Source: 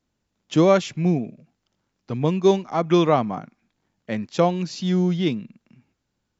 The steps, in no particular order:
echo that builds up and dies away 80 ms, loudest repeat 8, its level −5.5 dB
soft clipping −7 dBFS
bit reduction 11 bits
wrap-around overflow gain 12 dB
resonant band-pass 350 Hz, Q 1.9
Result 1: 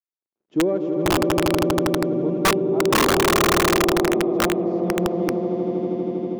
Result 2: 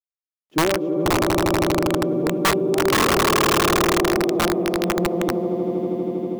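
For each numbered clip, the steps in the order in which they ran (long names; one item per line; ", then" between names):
soft clipping, then echo that builds up and dies away, then bit reduction, then resonant band-pass, then wrap-around overflow
resonant band-pass, then bit reduction, then echo that builds up and dies away, then wrap-around overflow, then soft clipping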